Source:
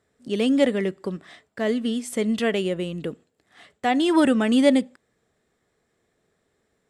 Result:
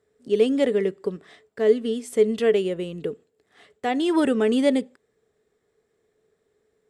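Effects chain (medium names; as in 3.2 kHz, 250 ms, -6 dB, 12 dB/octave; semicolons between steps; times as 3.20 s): peaking EQ 430 Hz +14 dB 0.27 oct; trim -4 dB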